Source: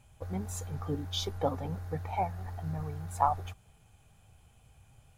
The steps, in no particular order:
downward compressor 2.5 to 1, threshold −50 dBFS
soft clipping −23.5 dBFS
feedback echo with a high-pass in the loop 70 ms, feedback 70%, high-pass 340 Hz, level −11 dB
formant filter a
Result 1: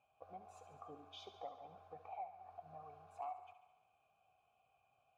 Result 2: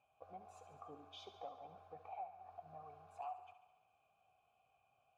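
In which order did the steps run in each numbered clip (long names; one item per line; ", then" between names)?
formant filter, then soft clipping, then downward compressor, then feedback echo with a high-pass in the loop
soft clipping, then formant filter, then downward compressor, then feedback echo with a high-pass in the loop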